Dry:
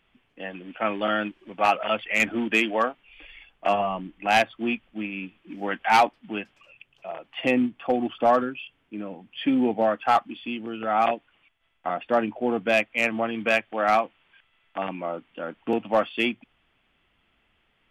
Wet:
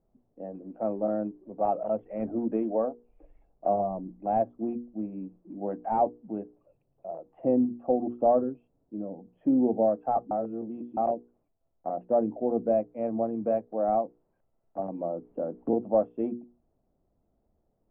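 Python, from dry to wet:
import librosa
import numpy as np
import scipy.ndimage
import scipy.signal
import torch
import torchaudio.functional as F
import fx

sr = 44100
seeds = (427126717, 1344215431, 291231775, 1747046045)

y = fx.band_squash(x, sr, depth_pct=100, at=(14.79, 15.69))
y = fx.edit(y, sr, fx.reverse_span(start_s=10.31, length_s=0.66), tone=tone)
y = scipy.signal.sosfilt(scipy.signal.cheby1(3, 1.0, 640.0, 'lowpass', fs=sr, output='sos'), y)
y = fx.hum_notches(y, sr, base_hz=60, count=8)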